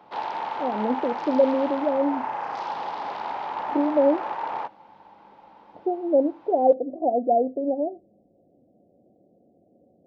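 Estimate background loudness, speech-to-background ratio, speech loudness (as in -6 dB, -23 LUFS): -31.0 LUFS, 7.0 dB, -24.0 LUFS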